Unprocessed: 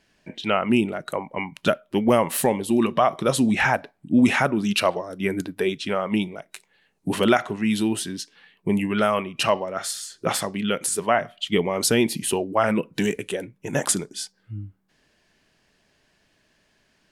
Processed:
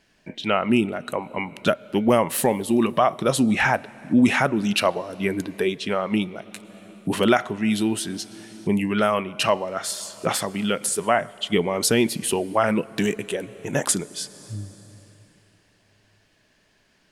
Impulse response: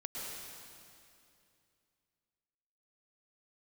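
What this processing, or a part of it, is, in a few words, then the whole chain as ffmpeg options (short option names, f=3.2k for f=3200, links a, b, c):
ducked reverb: -filter_complex "[0:a]asplit=3[a][b][c];[1:a]atrim=start_sample=2205[d];[b][d]afir=irnorm=-1:irlink=0[e];[c]apad=whole_len=754561[f];[e][f]sidechaincompress=threshold=-32dB:ratio=5:attack=12:release=650,volume=-9dB[g];[a][g]amix=inputs=2:normalize=0"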